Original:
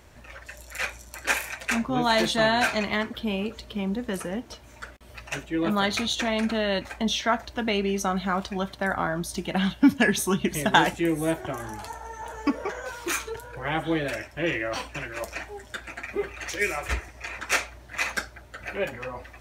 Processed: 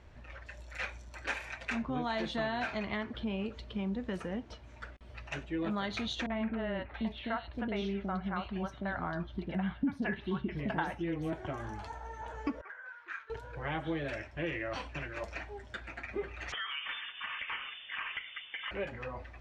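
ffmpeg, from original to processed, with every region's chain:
-filter_complex "[0:a]asettb=1/sr,asplit=3[s0][s1][s2];[s0]atrim=end=1.824[s3];[s1]atrim=start=1.82:end=3.4,asetpts=PTS-STARTPTS,afade=t=in:d=0.004:c=qsin,afade=t=out:st=1.576:d=0.004:c=qsin,highshelf=f=4600:g=-5,acompressor=mode=upward:threshold=0.0316:ratio=2.5:attack=3.2:release=140:knee=2.83:detection=peak[s4];[s2]atrim=start=3.396[s5];[s3][s4]acrossfade=d=0.004:c1=hsin:c2=qsin[s6];[s6][s5]acrossfade=d=0.004:c1=qsin:c2=hsin,asettb=1/sr,asplit=3[s7][s8][s9];[s7]atrim=end=6.264[s10];[s8]atrim=start=6.26:end=11.33,asetpts=PTS-STARTPTS,afade=t=in:d=0.004:c=qsin,afade=t=out:st=5.066:d=0.004:c=qsin,equalizer=f=7000:w=1.1:g=-14,acrossover=split=470|3000[s11][s12][s13];[s12]adelay=40[s14];[s13]adelay=680[s15];[s11][s14][s15]amix=inputs=3:normalize=0,atrim=end_sample=223587[s16];[s9]atrim=start=11.326[s17];[s10][s16]acrossfade=d=0.004:c1=hsin:c2=qsin[s18];[s18][s17]acrossfade=d=0.004:c1=qsin:c2=hsin,asettb=1/sr,asplit=3[s19][s20][s21];[s19]atrim=end=12.614[s22];[s20]atrim=start=12.61:end=13.3,asetpts=PTS-STARTPTS,afade=t=in:d=0.004:c=qsin,afade=t=out:st=0.686:d=0.004:c=qsin,lowpass=f=1600:t=q:w=4.8,aderivative[s23];[s21]atrim=start=13.296[s24];[s22][s23]acrossfade=d=0.004:c1=hsin:c2=qsin[s25];[s25][s24]acrossfade=d=0.004:c1=qsin:c2=hsin,asettb=1/sr,asplit=3[s26][s27][s28];[s26]atrim=end=16.524[s29];[s27]atrim=start=16.52:end=18.71,asetpts=PTS-STARTPTS,afade=t=in:d=0.004:c=qsin,afade=t=out:st=2.186:d=0.004:c=qsin,equalizer=f=840:w=0.4:g=14,lowpass=f=3100:t=q:w=0.5098,lowpass=f=3100:t=q:w=0.6013,lowpass=f=3100:t=q:w=0.9,lowpass=f=3100:t=q:w=2.563,afreqshift=-3600,acompressor=threshold=0.0398:ratio=6:attack=3.2:release=140:knee=1:detection=peak[s30];[s28]atrim=start=18.706[s31];[s29][s30]acrossfade=d=0.004:c1=hsin:c2=qsin[s32];[s32][s31]acrossfade=d=0.004:c1=qsin:c2=hsin,lowpass=4000,acompressor=threshold=0.0447:ratio=2.5,lowshelf=f=120:g=7.5,volume=0.473"

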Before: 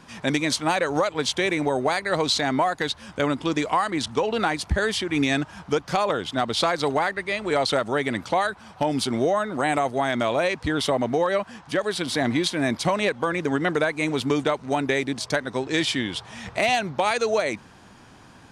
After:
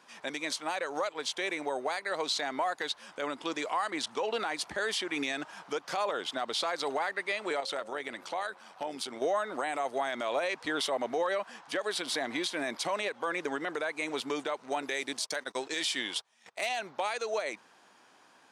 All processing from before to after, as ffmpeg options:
-filter_complex "[0:a]asettb=1/sr,asplit=3[s0][s1][s2];[s0]atrim=end=7.604[s3];[s1]atrim=start=7.6:end=9.22,asetpts=PTS-STARTPTS,afade=t=in:d=0.004:c=qsin,afade=t=out:st=1.616:d=0.004:c=qsin,bandreject=f=179.8:t=h:w=4,bandreject=f=359.6:t=h:w=4,bandreject=f=539.4:t=h:w=4,acompressor=threshold=0.0355:ratio=2:attack=3.2:release=140:knee=1:detection=peak,tremolo=f=92:d=0.462[s4];[s2]atrim=start=9.216[s5];[s3][s4]acrossfade=d=0.004:c1=hsin:c2=qsin[s6];[s6][s5]acrossfade=d=0.004:c1=qsin:c2=hsin,asettb=1/sr,asplit=3[s7][s8][s9];[s7]atrim=end=14.824[s10];[s8]atrim=start=14.82:end=16.69,asetpts=PTS-STARTPTS,afade=t=in:d=0.004:c=qsin,afade=t=out:st=1.866:d=0.004:c=qsin,agate=range=0.0562:threshold=0.0178:ratio=16:release=100:detection=peak,highshelf=f=3600:g=9.5[s11];[s9]atrim=start=16.686[s12];[s10][s11]acrossfade=d=0.004:c1=hsin:c2=qsin[s13];[s13][s12]acrossfade=d=0.004:c1=qsin:c2=hsin,highpass=440,dynaudnorm=f=890:g=7:m=1.88,alimiter=limit=0.211:level=0:latency=1:release=82,volume=0.398"

